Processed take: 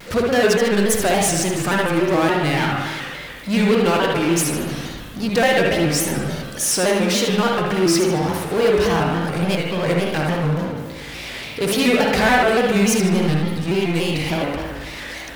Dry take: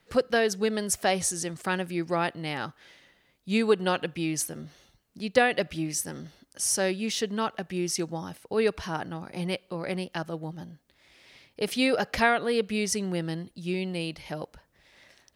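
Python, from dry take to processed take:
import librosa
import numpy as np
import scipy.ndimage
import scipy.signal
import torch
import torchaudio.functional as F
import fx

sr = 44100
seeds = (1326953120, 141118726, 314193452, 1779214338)

p1 = fx.lower_of_two(x, sr, delay_ms=4.5, at=(10.23, 10.69))
p2 = fx.power_curve(p1, sr, exponent=0.5)
p3 = p2 + fx.echo_feedback(p2, sr, ms=76, feedback_pct=48, wet_db=-8, dry=0)
p4 = fx.rev_spring(p3, sr, rt60_s=1.4, pass_ms=(56,), chirp_ms=40, drr_db=-1.0)
p5 = fx.vibrato_shape(p4, sr, shape='square', rate_hz=3.5, depth_cents=100.0)
y = p5 * 10.0 ** (-2.0 / 20.0)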